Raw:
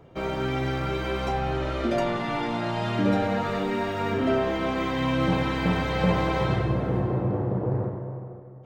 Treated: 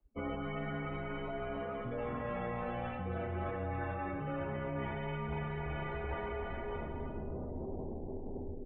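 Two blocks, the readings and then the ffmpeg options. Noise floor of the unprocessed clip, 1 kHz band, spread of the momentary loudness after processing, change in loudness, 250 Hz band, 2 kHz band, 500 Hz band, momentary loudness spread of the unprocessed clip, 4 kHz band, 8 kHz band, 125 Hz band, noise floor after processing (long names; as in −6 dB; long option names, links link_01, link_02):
−42 dBFS, −12.5 dB, 4 LU, −13.5 dB, −15.0 dB, −12.0 dB, −12.5 dB, 4 LU, −19.5 dB, can't be measured, −13.0 dB, −42 dBFS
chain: -filter_complex "[0:a]afftdn=noise_reduction=34:noise_floor=-35,asplit=2[link_01][link_02];[link_02]aecho=0:1:280|448|548.8|609.3|645.6:0.631|0.398|0.251|0.158|0.1[link_03];[link_01][link_03]amix=inputs=2:normalize=0,areverse,acompressor=threshold=-35dB:ratio=16,areverse,adynamicequalizer=threshold=0.00224:dfrequency=360:dqfactor=2.5:tfrequency=360:tqfactor=2.5:attack=5:release=100:ratio=0.375:range=2:mode=cutabove:tftype=bell,highpass=frequency=150:width_type=q:width=0.5412,highpass=frequency=150:width_type=q:width=1.307,lowpass=frequency=3000:width_type=q:width=0.5176,lowpass=frequency=3000:width_type=q:width=0.7071,lowpass=frequency=3000:width_type=q:width=1.932,afreqshift=-110,volume=2dB"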